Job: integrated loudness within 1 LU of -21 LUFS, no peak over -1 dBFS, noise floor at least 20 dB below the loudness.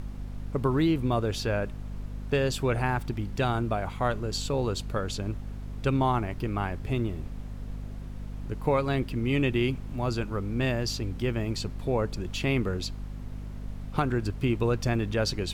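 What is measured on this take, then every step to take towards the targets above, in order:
hum 50 Hz; harmonics up to 250 Hz; hum level -35 dBFS; noise floor -39 dBFS; noise floor target -49 dBFS; loudness -29.0 LUFS; peak -11.5 dBFS; loudness target -21.0 LUFS
-> notches 50/100/150/200/250 Hz; noise print and reduce 10 dB; gain +8 dB

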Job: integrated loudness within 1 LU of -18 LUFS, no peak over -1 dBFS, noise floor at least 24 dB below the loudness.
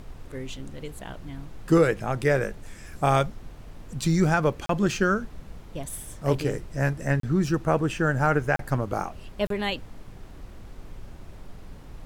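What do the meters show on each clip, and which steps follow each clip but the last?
dropouts 4; longest dropout 33 ms; noise floor -44 dBFS; noise floor target -50 dBFS; loudness -25.5 LUFS; peak -9.0 dBFS; loudness target -18.0 LUFS
-> interpolate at 4.66/7.2/8.56/9.47, 33 ms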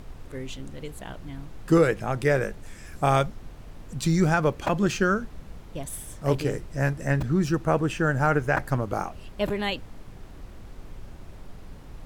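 dropouts 0; noise floor -44 dBFS; noise floor target -50 dBFS
-> noise print and reduce 6 dB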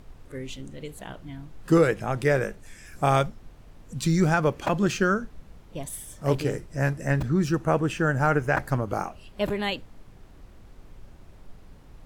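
noise floor -50 dBFS; loudness -25.5 LUFS; peak -9.0 dBFS; loudness target -18.0 LUFS
-> gain +7.5 dB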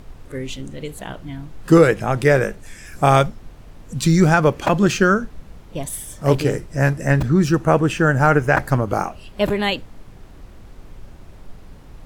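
loudness -18.0 LUFS; peak -1.5 dBFS; noise floor -42 dBFS

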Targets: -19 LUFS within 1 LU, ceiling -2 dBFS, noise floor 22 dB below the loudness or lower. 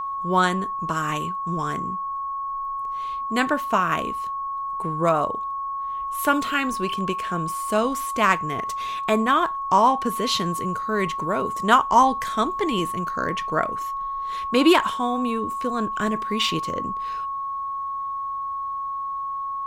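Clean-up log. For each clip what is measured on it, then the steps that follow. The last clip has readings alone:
steady tone 1100 Hz; tone level -26 dBFS; loudness -23.5 LUFS; peak -4.0 dBFS; loudness target -19.0 LUFS
-> notch 1100 Hz, Q 30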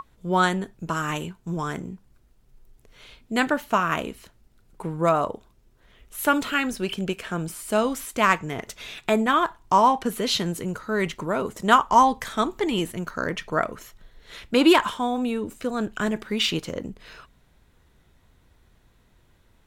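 steady tone none; loudness -24.0 LUFS; peak -4.5 dBFS; loudness target -19.0 LUFS
-> gain +5 dB; limiter -2 dBFS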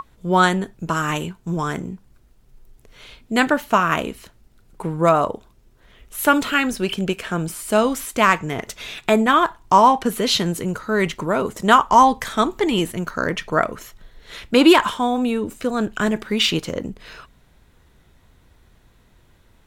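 loudness -19.5 LUFS; peak -2.0 dBFS; noise floor -55 dBFS

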